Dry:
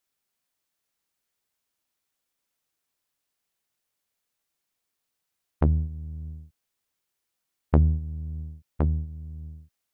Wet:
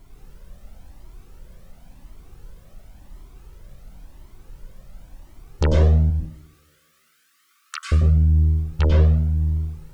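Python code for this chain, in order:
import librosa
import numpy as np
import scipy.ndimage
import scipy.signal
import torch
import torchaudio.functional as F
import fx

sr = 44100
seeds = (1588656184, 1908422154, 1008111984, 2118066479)

p1 = fx.peak_eq(x, sr, hz=1500.0, db=-3.5, octaves=1.6)
p2 = fx.fold_sine(p1, sr, drive_db=17, ceiling_db=-8.5)
p3 = p1 + F.gain(torch.from_numpy(p2), -8.0).numpy()
p4 = fx.dmg_noise_colour(p3, sr, seeds[0], colour='brown', level_db=-47.0)
p5 = fx.brickwall_highpass(p4, sr, low_hz=1100.0, at=(6.1, 7.92))
p6 = p5 + fx.echo_tape(p5, sr, ms=161, feedback_pct=67, wet_db=-24, lp_hz=1400.0, drive_db=8.0, wow_cents=38, dry=0)
p7 = fx.rev_plate(p6, sr, seeds[1], rt60_s=0.64, hf_ratio=0.9, predelay_ms=85, drr_db=-0.5)
p8 = fx.comb_cascade(p7, sr, direction='rising', hz=0.94)
y = F.gain(torch.from_numpy(p8), 4.0).numpy()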